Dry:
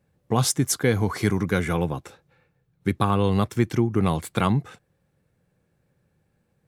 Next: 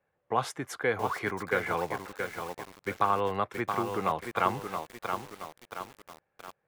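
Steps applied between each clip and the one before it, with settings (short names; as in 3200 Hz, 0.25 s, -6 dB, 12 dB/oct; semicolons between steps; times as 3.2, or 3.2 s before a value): three-band isolator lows -19 dB, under 480 Hz, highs -20 dB, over 2600 Hz; lo-fi delay 0.674 s, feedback 55%, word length 7-bit, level -5.5 dB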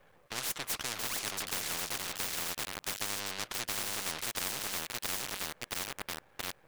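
half-wave rectifier; spectral compressor 10:1; gain -5.5 dB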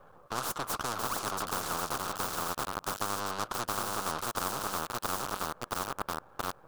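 resonant high shelf 1600 Hz -7.5 dB, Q 3; gain +6 dB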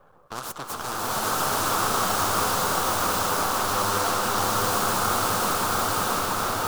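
bloom reverb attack 0.96 s, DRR -10 dB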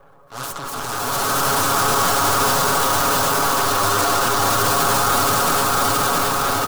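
comb 7.2 ms; transient shaper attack -11 dB, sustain +7 dB; gain +5 dB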